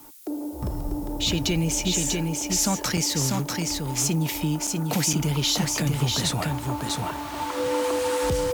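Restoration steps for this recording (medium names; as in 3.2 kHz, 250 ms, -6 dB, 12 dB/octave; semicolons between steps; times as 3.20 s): band-stop 500 Hz, Q 30; interpolate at 2.97/4.67/5.13/6.89 s, 5.1 ms; noise print and reduce 30 dB; inverse comb 644 ms -3.5 dB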